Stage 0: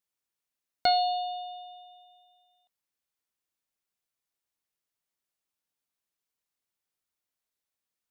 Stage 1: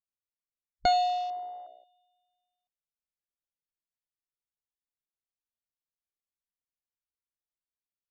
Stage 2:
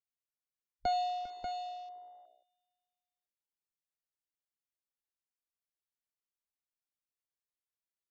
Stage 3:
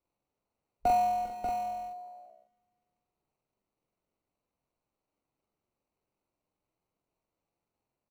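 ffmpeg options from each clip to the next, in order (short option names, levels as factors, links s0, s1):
-af "afwtdn=0.0112,aemphasis=mode=reproduction:type=bsi"
-filter_complex "[0:a]acrossover=split=230|1100[s0][s1][s2];[s2]alimiter=level_in=1.58:limit=0.0631:level=0:latency=1,volume=0.631[s3];[s0][s1][s3]amix=inputs=3:normalize=0,aecho=1:1:400|589:0.178|0.501,volume=0.447"
-filter_complex "[0:a]acrossover=split=200|1500[s0][s1][s2];[s2]acrusher=samples=26:mix=1:aa=0.000001[s3];[s0][s1][s3]amix=inputs=3:normalize=0,asplit=2[s4][s5];[s5]adelay=44,volume=0.75[s6];[s4][s6]amix=inputs=2:normalize=0,volume=1.88"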